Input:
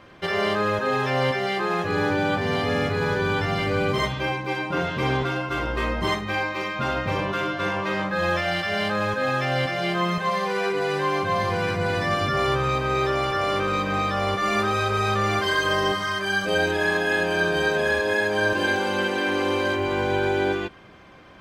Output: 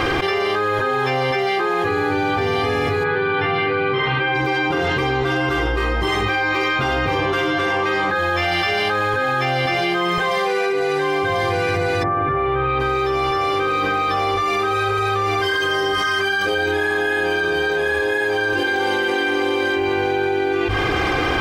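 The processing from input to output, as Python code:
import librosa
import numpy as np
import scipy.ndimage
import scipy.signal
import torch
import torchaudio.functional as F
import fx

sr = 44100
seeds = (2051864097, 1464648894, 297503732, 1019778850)

y = fx.cabinet(x, sr, low_hz=120.0, low_slope=24, high_hz=3500.0, hz=(310.0, 630.0, 1600.0), db=(-4, -6, 3), at=(3.03, 4.34), fade=0.02)
y = fx.lowpass(y, sr, hz=fx.line((12.02, 1400.0), (12.79, 3600.0)), slope=24, at=(12.02, 12.79), fade=0.02)
y = fx.hum_notches(y, sr, base_hz=50, count=2)
y = y + 0.74 * np.pad(y, (int(2.5 * sr / 1000.0), 0))[:len(y)]
y = fx.env_flatten(y, sr, amount_pct=100)
y = y * 10.0 ** (-4.0 / 20.0)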